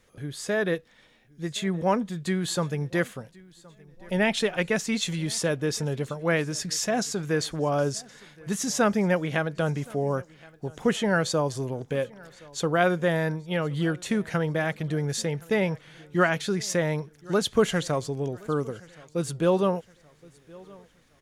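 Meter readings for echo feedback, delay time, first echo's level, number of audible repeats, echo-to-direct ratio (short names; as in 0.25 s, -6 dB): 42%, 1.07 s, -24.0 dB, 2, -23.0 dB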